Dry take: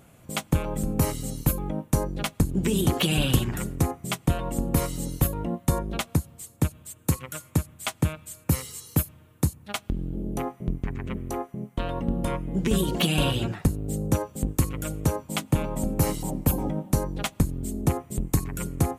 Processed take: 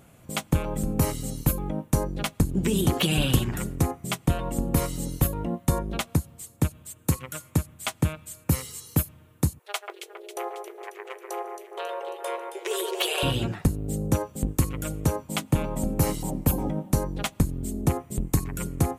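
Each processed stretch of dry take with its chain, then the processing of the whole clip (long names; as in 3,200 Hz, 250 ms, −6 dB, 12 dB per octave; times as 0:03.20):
0:09.59–0:13.23: linear-phase brick-wall high-pass 350 Hz + delay that swaps between a low-pass and a high-pass 136 ms, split 2,100 Hz, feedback 74%, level −5.5 dB
whole clip: no processing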